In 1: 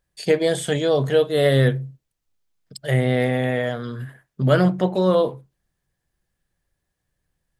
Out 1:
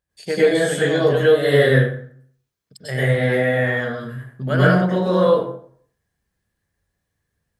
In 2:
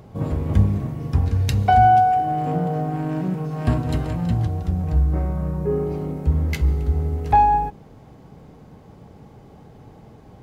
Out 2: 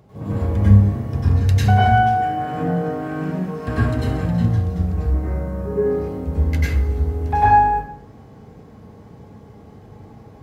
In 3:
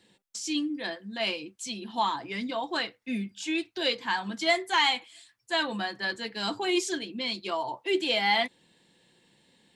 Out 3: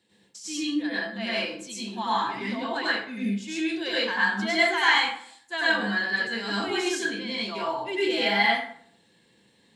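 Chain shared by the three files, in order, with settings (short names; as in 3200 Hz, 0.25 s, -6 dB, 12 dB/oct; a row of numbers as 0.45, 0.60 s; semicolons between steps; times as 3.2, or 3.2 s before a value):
HPF 41 Hz; dynamic EQ 1600 Hz, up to +7 dB, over -44 dBFS, Q 2.6; plate-style reverb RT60 0.58 s, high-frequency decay 0.65×, pre-delay 85 ms, DRR -8.5 dB; gain -7 dB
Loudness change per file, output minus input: +2.5, +2.0, +3.5 LU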